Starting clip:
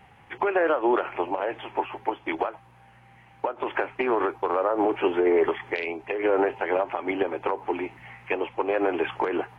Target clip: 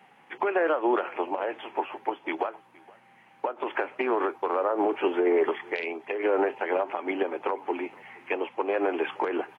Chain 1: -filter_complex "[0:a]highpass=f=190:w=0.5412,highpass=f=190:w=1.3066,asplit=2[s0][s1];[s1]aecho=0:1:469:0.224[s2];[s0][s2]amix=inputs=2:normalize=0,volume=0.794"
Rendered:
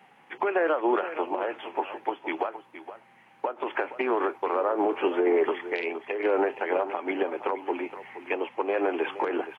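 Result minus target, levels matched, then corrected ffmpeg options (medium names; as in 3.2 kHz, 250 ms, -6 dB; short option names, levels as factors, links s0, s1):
echo-to-direct +11.5 dB
-filter_complex "[0:a]highpass=f=190:w=0.5412,highpass=f=190:w=1.3066,asplit=2[s0][s1];[s1]aecho=0:1:469:0.0596[s2];[s0][s2]amix=inputs=2:normalize=0,volume=0.794"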